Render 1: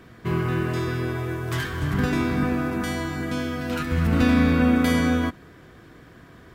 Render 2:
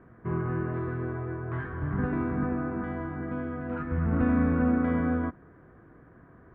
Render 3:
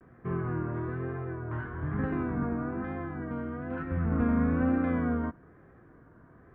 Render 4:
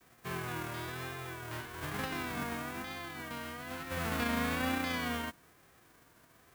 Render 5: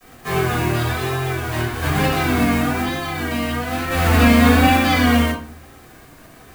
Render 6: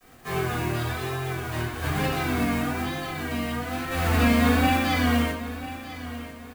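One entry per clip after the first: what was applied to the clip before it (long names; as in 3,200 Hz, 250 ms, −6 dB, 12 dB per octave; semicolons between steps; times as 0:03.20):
low-pass filter 1,600 Hz 24 dB per octave; level −5.5 dB
pitch vibrato 1.1 Hz 94 cents; level −2 dB
spectral envelope flattened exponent 0.3; level −7 dB
rectangular room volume 300 cubic metres, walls furnished, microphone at 6 metres; level +7.5 dB
repeating echo 993 ms, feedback 36%, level −14 dB; level −7.5 dB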